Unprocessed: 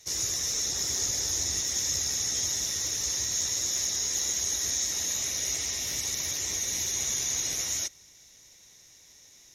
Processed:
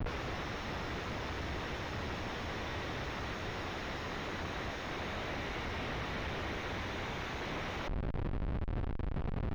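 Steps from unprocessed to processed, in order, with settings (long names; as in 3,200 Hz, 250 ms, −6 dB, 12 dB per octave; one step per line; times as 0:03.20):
running median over 5 samples
background noise pink −48 dBFS
comparator with hysteresis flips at −41 dBFS
high-frequency loss of the air 370 metres
level +1 dB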